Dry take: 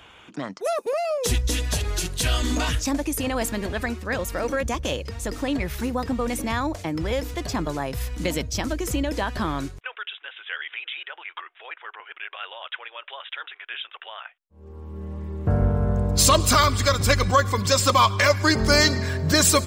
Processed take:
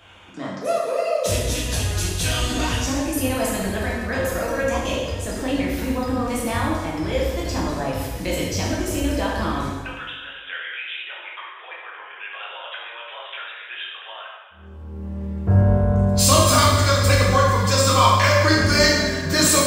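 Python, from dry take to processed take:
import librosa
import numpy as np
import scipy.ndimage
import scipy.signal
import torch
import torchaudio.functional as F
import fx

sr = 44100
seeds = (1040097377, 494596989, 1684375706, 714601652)

y = fx.rev_plate(x, sr, seeds[0], rt60_s=1.3, hf_ratio=0.85, predelay_ms=0, drr_db=-5.5)
y = F.gain(torch.from_numpy(y), -4.0).numpy()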